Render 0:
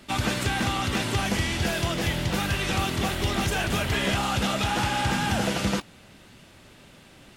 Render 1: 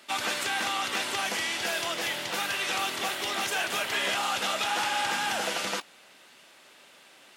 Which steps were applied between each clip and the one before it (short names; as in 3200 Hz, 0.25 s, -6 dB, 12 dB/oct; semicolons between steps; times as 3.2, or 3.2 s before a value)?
Bessel high-pass 660 Hz, order 2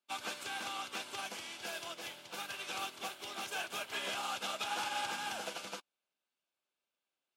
notch 1900 Hz, Q 5.8; upward expander 2.5:1, over -47 dBFS; gain -7 dB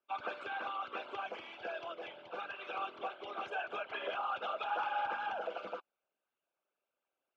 formant sharpening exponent 2; LPF 1800 Hz 12 dB/oct; gain +3 dB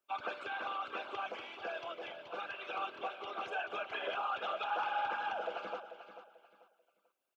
high shelf 4600 Hz +5.5 dB; on a send: feedback echo 0.44 s, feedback 28%, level -11.5 dB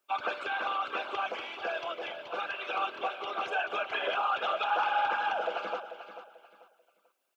low shelf 230 Hz -7.5 dB; gain +7.5 dB